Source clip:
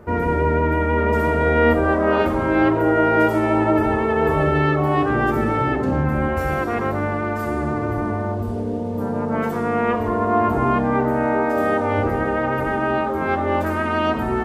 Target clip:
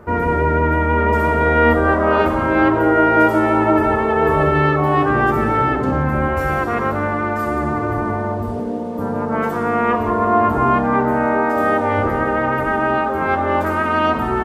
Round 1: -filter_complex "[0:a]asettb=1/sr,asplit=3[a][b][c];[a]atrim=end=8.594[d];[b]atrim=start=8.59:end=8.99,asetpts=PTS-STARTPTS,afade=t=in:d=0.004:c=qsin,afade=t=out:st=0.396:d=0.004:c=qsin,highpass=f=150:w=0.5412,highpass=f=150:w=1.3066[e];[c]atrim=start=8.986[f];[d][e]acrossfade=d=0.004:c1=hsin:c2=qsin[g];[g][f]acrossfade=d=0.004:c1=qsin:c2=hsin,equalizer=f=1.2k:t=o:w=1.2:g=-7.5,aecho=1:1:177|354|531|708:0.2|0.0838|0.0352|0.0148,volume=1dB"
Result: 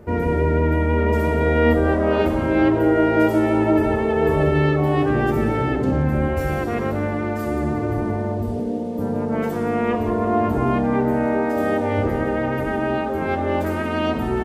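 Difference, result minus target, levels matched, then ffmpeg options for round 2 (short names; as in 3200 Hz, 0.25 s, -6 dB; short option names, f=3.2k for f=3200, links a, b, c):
1000 Hz band -5.0 dB
-filter_complex "[0:a]asettb=1/sr,asplit=3[a][b][c];[a]atrim=end=8.594[d];[b]atrim=start=8.59:end=8.99,asetpts=PTS-STARTPTS,afade=t=in:d=0.004:c=qsin,afade=t=out:st=0.396:d=0.004:c=qsin,highpass=f=150:w=0.5412,highpass=f=150:w=1.3066[e];[c]atrim=start=8.986[f];[d][e]acrossfade=d=0.004:c1=hsin:c2=qsin[g];[g][f]acrossfade=d=0.004:c1=qsin:c2=hsin,equalizer=f=1.2k:t=o:w=1.2:g=4.5,aecho=1:1:177|354|531|708:0.2|0.0838|0.0352|0.0148,volume=1dB"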